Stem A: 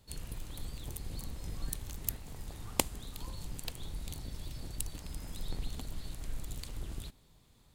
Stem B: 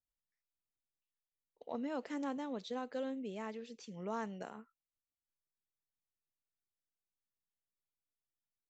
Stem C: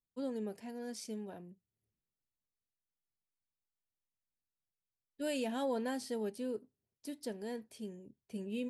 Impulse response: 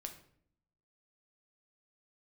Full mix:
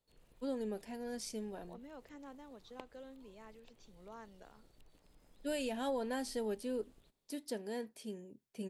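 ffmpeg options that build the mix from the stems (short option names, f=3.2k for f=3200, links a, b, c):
-filter_complex "[0:a]acrossover=split=3600[a][b];[b]acompressor=threshold=-55dB:ratio=4:attack=1:release=60[c];[a][c]amix=inputs=2:normalize=0,equalizer=f=500:w=1.3:g=6,volume=-20dB[d];[1:a]volume=-11.5dB[e];[2:a]alimiter=level_in=6dB:limit=-24dB:level=0:latency=1:release=347,volume=-6dB,adelay=250,volume=2dB[f];[d][e][f]amix=inputs=3:normalize=0,equalizer=f=72:w=0.65:g=-10.5"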